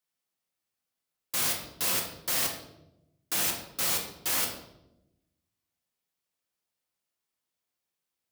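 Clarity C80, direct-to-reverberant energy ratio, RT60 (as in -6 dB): 9.5 dB, 1.0 dB, 0.90 s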